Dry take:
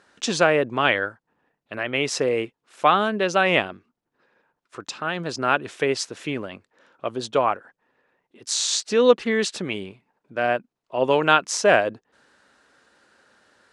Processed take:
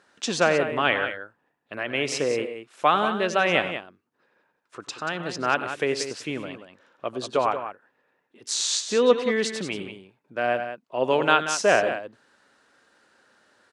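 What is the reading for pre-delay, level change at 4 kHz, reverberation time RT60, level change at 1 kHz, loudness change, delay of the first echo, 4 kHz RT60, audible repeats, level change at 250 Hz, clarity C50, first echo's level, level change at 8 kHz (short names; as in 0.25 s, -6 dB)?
none, -2.0 dB, none, -2.0 dB, -2.0 dB, 93 ms, none, 2, -2.5 dB, none, -16.5 dB, -1.5 dB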